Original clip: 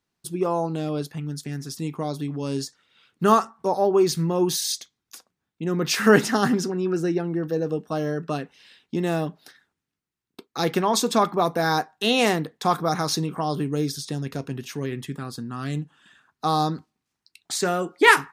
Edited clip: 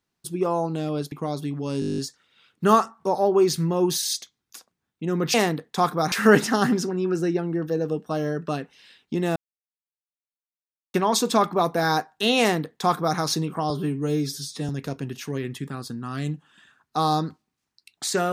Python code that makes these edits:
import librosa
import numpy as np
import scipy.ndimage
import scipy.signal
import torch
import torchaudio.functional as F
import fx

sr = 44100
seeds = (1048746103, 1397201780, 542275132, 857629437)

y = fx.edit(x, sr, fx.cut(start_s=1.12, length_s=0.77),
    fx.stutter(start_s=2.57, slice_s=0.02, count=10),
    fx.silence(start_s=9.17, length_s=1.58),
    fx.duplicate(start_s=12.21, length_s=0.78, to_s=5.93),
    fx.stretch_span(start_s=13.51, length_s=0.66, factor=1.5), tone=tone)